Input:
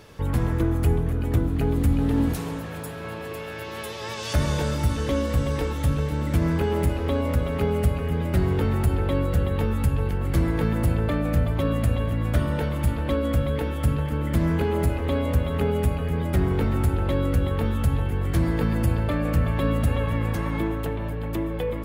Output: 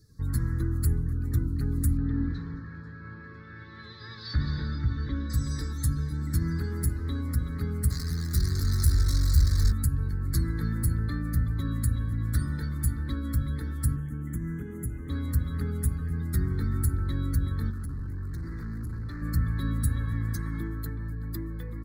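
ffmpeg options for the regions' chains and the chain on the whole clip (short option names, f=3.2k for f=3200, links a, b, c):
-filter_complex "[0:a]asettb=1/sr,asplit=3[a][b][c];[a]atrim=end=1.974[d];[b]atrim=start=1.97:end=5.3,asetpts=PTS-STARTPTS,afade=t=in:d=0.004:c=qsin,afade=t=out:st=3.326:d=0.004:c=qsin,lowpass=f=3.8k:w=0.5412,lowpass=f=3.8k:w=1.3066,aecho=1:1:215:0.251,atrim=end_sample=146853[e];[c]atrim=start=5.296[f];[d][e]acrossfade=d=0.004:c1=hsin:c2=qsin[g];[g][f]acrossfade=d=0.004:c1=qsin:c2=hsin,asettb=1/sr,asplit=3[h][i][j];[h]atrim=end=7.904[k];[i]atrim=start=7.9:end=9.72,asetpts=PTS-STARTPTS,afade=t=in:d=0.004:c=qsin,afade=t=out:st=1.816:d=0.004:c=qsin,asubboost=boost=7.5:cutoff=80,acrossover=split=140|3000[l][m][n];[m]acompressor=threshold=-25dB:ratio=10:attack=3.2:release=140:knee=2.83:detection=peak[o];[l][o][n]amix=inputs=3:normalize=0,acrusher=bits=6:dc=4:mix=0:aa=0.000001[p];[j]atrim=start=9.716[q];[k][p]acrossfade=d=0.004:c1=hsin:c2=qsin[r];[r][q]acrossfade=d=0.004:c1=qsin:c2=hsin,asettb=1/sr,asplit=3[s][t][u];[s]atrim=end=13.964[v];[t]atrim=start=13.96:end=15.1,asetpts=PTS-STARTPTS,afade=t=in:d=0.004:c=qsin,afade=t=out:st=1.136:d=0.004:c=qsin,equalizer=f=81:t=o:w=0.29:g=-12.5,acrossover=split=590|1800[w][x][y];[w]acompressor=threshold=-23dB:ratio=4[z];[x]acompressor=threshold=-46dB:ratio=4[aa];[y]acompressor=threshold=-41dB:ratio=4[ab];[z][aa][ab]amix=inputs=3:normalize=0,asuperstop=centerf=4600:order=8:qfactor=1.8[ac];[u]atrim=start=15.096[ad];[v][ac]acrossfade=d=0.004:c1=hsin:c2=qsin[ae];[ae][ad]acrossfade=d=0.004:c1=qsin:c2=hsin,asettb=1/sr,asplit=3[af][ag][ah];[af]atrim=end=17.704[ai];[ag]atrim=start=17.7:end=19.22,asetpts=PTS-STARTPTS,afade=t=in:d=0.004:c=qsin,afade=t=out:st=1.516:d=0.004:c=qsin,asoftclip=type=hard:threshold=-27.5dB,highshelf=f=4.4k:g=-3.5[aj];[ah]atrim=start=19.216[ak];[ai][aj]acrossfade=d=0.004:c1=hsin:c2=qsin[al];[al][ak]acrossfade=d=0.004:c1=qsin:c2=hsin,afftdn=nr=19:nf=-43,firequalizer=gain_entry='entry(120,0);entry(190,-4);entry(280,-4);entry(640,-29);entry(1200,-6);entry(1800,-1);entry(2800,-29);entry(4100,12)':delay=0.05:min_phase=1,volume=-3.5dB"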